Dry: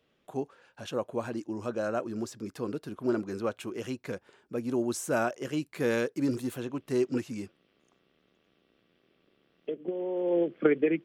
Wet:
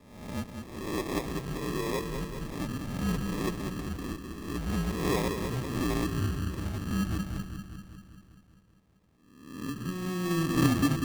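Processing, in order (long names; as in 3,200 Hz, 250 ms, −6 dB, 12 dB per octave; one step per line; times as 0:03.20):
peak hold with a rise ahead of every peak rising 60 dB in 0.88 s
delay with a low-pass on its return 196 ms, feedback 63%, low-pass 880 Hz, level −6 dB
single-sideband voice off tune −180 Hz 190–3,600 Hz
decimation without filtering 30×
level −3 dB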